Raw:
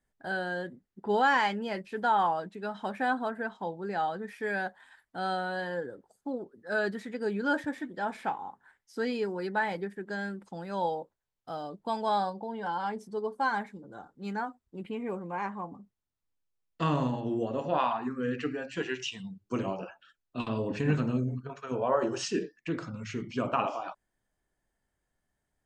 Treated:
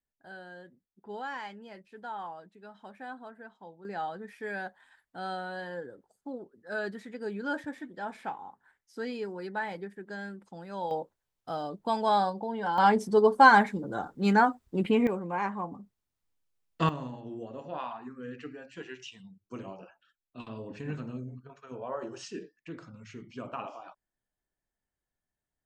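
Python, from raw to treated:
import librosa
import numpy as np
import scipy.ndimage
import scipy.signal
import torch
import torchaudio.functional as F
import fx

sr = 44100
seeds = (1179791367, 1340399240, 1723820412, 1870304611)

y = fx.gain(x, sr, db=fx.steps((0.0, -13.5), (3.85, -4.5), (10.91, 3.0), (12.78, 12.0), (15.07, 3.0), (16.89, -9.5)))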